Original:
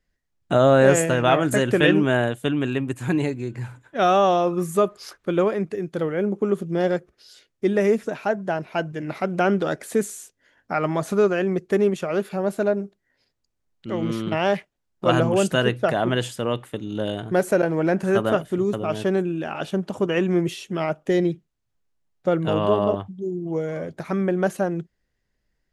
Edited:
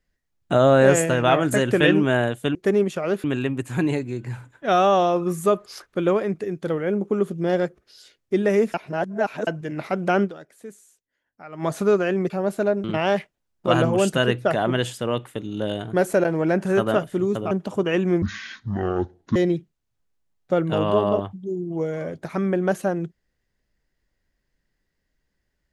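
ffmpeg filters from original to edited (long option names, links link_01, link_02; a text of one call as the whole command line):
ffmpeg -i in.wav -filter_complex "[0:a]asplit=12[link_01][link_02][link_03][link_04][link_05][link_06][link_07][link_08][link_09][link_10][link_11][link_12];[link_01]atrim=end=2.552[link_13];[link_02]atrim=start=11.608:end=12.302[link_14];[link_03]atrim=start=2.548:end=8.052[link_15];[link_04]atrim=start=8.048:end=8.782,asetpts=PTS-STARTPTS,areverse[link_16];[link_05]atrim=start=8.778:end=9.95,asetpts=PTS-STARTPTS,afade=type=out:start_time=0.772:duration=0.4:curve=exp:silence=0.133352[link_17];[link_06]atrim=start=9.95:end=10.55,asetpts=PTS-STARTPTS,volume=-17.5dB[link_18];[link_07]atrim=start=10.55:end=11.612,asetpts=PTS-STARTPTS,afade=type=in:duration=0.4:curve=exp:silence=0.133352[link_19];[link_08]atrim=start=12.298:end=12.842[link_20];[link_09]atrim=start=14.218:end=18.892[link_21];[link_10]atrim=start=19.738:end=20.454[link_22];[link_11]atrim=start=20.45:end=21.11,asetpts=PTS-STARTPTS,asetrate=25578,aresample=44100[link_23];[link_12]atrim=start=21.106[link_24];[link_13][link_14]acrossfade=duration=0.004:curve1=hsin:curve2=hsin[link_25];[link_25][link_15]acrossfade=duration=0.004:curve1=hsin:curve2=hsin[link_26];[link_26][link_16]acrossfade=duration=0.004:curve1=hsin:curve2=hsin[link_27];[link_17][link_18][link_19]concat=n=3:v=0:a=1[link_28];[link_27][link_28]acrossfade=duration=0.004:curve1=hsin:curve2=hsin[link_29];[link_29][link_20]acrossfade=duration=0.004:curve1=hsin:curve2=hsin[link_30];[link_30][link_21]acrossfade=duration=0.004:curve1=hsin:curve2=hsin[link_31];[link_31][link_22]acrossfade=duration=0.004:curve1=hsin:curve2=hsin[link_32];[link_32][link_23]acrossfade=duration=0.004:curve1=hsin:curve2=hsin[link_33];[link_33][link_24]acrossfade=duration=0.004:curve1=hsin:curve2=hsin" out.wav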